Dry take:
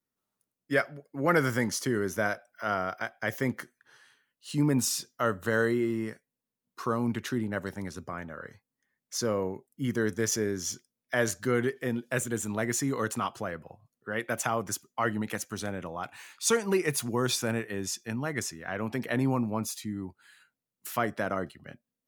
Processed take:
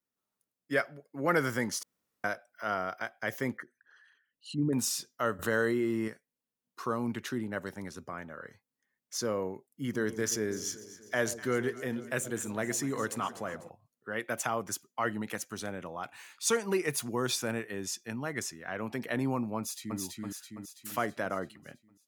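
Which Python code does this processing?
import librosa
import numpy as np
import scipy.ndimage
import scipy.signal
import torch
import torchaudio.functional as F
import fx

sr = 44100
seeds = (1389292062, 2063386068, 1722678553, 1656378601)

y = fx.envelope_sharpen(x, sr, power=2.0, at=(3.57, 4.73))
y = fx.env_flatten(y, sr, amount_pct=50, at=(5.39, 6.08))
y = fx.echo_alternate(y, sr, ms=124, hz=820.0, feedback_pct=72, wet_db=-13, at=(9.93, 13.68), fade=0.02)
y = fx.echo_throw(y, sr, start_s=19.57, length_s=0.42, ms=330, feedback_pct=55, wet_db=-1.0)
y = fx.edit(y, sr, fx.room_tone_fill(start_s=1.83, length_s=0.41), tone=tone)
y = fx.low_shelf(y, sr, hz=110.0, db=-8.5)
y = y * 10.0 ** (-2.5 / 20.0)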